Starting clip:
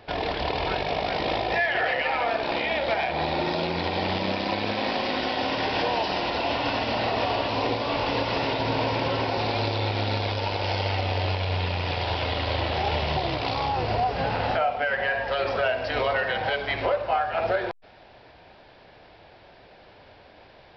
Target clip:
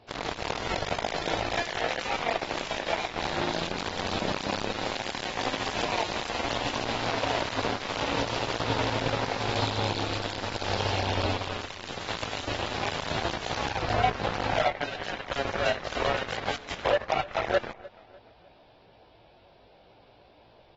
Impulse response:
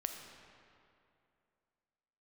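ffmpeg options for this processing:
-filter_complex "[0:a]equalizer=f=1.8k:t=o:w=0.73:g=-8,asplit=2[a][b];[b]acompressor=threshold=-39dB:ratio=5,volume=-3dB[c];[a][c]amix=inputs=2:normalize=0,flanger=delay=17:depth=2.7:speed=0.59,aeval=exprs='0.178*(cos(1*acos(clip(val(0)/0.178,-1,1)))-cos(1*PI/2))+0.00178*(cos(3*acos(clip(val(0)/0.178,-1,1)))-cos(3*PI/2))+0.00562*(cos(6*acos(clip(val(0)/0.178,-1,1)))-cos(6*PI/2))+0.0355*(cos(7*acos(clip(val(0)/0.178,-1,1)))-cos(7*PI/2))+0.00501*(cos(8*acos(clip(val(0)/0.178,-1,1)))-cos(8*PI/2))':c=same,asplit=2[d][e];[e]adelay=301,lowpass=f=3.2k:p=1,volume=-20.5dB,asplit=2[f][g];[g]adelay=301,lowpass=f=3.2k:p=1,volume=0.45,asplit=2[h][i];[i]adelay=301,lowpass=f=3.2k:p=1,volume=0.45[j];[d][f][h][j]amix=inputs=4:normalize=0" -ar 44100 -c:a aac -b:a 24k

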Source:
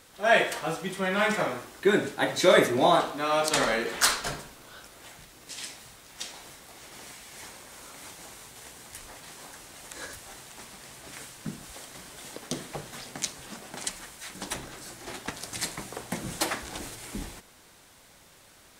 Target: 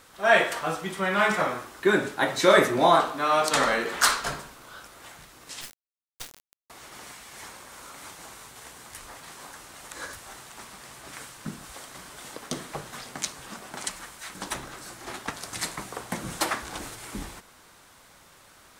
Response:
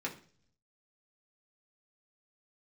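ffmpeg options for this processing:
-filter_complex "[0:a]equalizer=f=1.2k:t=o:w=0.96:g=6,asettb=1/sr,asplit=3[a][b][c];[a]atrim=end=5.614[d];[b]atrim=start=5.61:end=6.7,asetpts=PTS-STARTPTS,afade=t=in:d=0.004:c=qsin,afade=t=out:st=1.086:d=0.004:c=qsin,acrusher=bits=3:dc=4:mix=0:aa=0.000001[e];[c]atrim=start=6.696[f];[d][e]acrossfade=d=0.004:c1=hsin:c2=qsin[g];[g][f]acrossfade=d=0.004:c1=qsin:c2=hsin"

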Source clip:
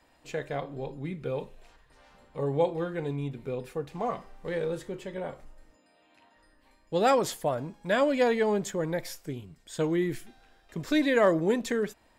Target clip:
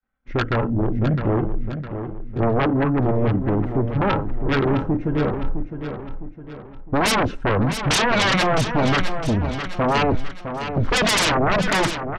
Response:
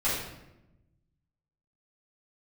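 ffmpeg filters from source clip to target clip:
-filter_complex "[0:a]agate=range=-33dB:threshold=-50dB:ratio=3:detection=peak,afwtdn=0.0112,lowpass=f=1.8k:t=q:w=1.6,equalizer=f=720:t=o:w=2.5:g=-15,aecho=1:1:3.1:0.36,asetrate=36028,aresample=44100,atempo=1.22405,aeval=exprs='0.112*sin(PI/2*8.91*val(0)/0.112)':c=same,asplit=2[a][b];[b]aecho=0:1:659|1318|1977|2636|3295:0.355|0.153|0.0656|0.0282|0.0121[c];[a][c]amix=inputs=2:normalize=0,volume=3.5dB"

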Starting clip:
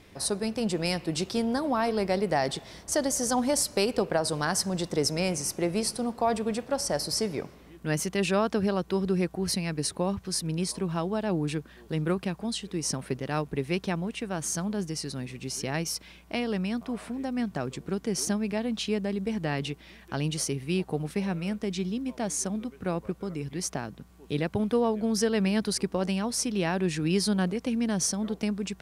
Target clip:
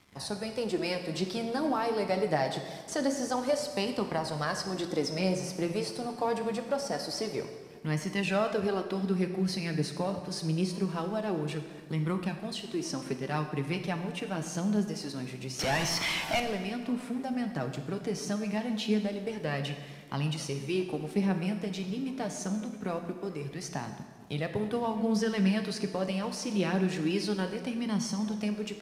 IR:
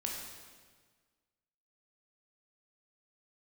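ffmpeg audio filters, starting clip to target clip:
-filter_complex "[0:a]acrossover=split=5100[a][b];[b]acompressor=threshold=-44dB:ratio=4:attack=1:release=60[c];[a][c]amix=inputs=2:normalize=0,highpass=f=92:w=0.5412,highpass=f=92:w=1.3066,asplit=2[d][e];[e]acompressor=threshold=-37dB:ratio=6,volume=-1dB[f];[d][f]amix=inputs=2:normalize=0,asettb=1/sr,asplit=3[g][h][i];[g]atrim=end=15.594[j];[h]atrim=start=15.59:end=16.4,asetpts=PTS-STARTPTS,afade=t=in:d=0.004:c=qsin,afade=t=out:st=0.806:d=0.004:c=qsin,asplit=2[k][l];[l]highpass=f=720:p=1,volume=35dB,asoftclip=type=tanh:threshold=-17.5dB[m];[k][m]amix=inputs=2:normalize=0,lowpass=f=4.5k:p=1,volume=-6dB[n];[i]atrim=start=16.396[o];[j][n]acrossfade=d=0.004:c1=hsin:c2=qsin[p];[p][o]acrossfade=d=0.004:c1=qsin:c2=hsin,flanger=delay=0.9:depth=6:regen=23:speed=0.25:shape=sinusoidal,asplit=2[q][r];[r]adelay=1691,volume=-22dB,highshelf=f=4k:g=-38[s];[q][s]amix=inputs=2:normalize=0,aeval=exprs='sgn(val(0))*max(abs(val(0))-0.00237,0)':c=same,asplit=2[t][u];[1:a]atrim=start_sample=2205[v];[u][v]afir=irnorm=-1:irlink=0,volume=-1dB[w];[t][w]amix=inputs=2:normalize=0,aresample=32000,aresample=44100,volume=-5.5dB"

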